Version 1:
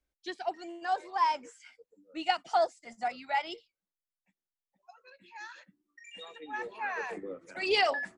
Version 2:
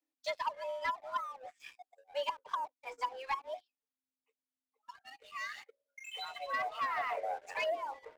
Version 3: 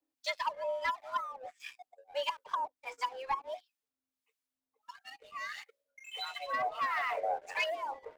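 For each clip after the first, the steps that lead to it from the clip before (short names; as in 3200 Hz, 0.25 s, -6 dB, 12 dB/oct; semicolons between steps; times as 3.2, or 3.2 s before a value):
frequency shift +260 Hz; treble ducked by the level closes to 370 Hz, closed at -27 dBFS; sample leveller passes 2; gain -3.5 dB
harmonic tremolo 1.5 Hz, depth 70%, crossover 1100 Hz; gain +5.5 dB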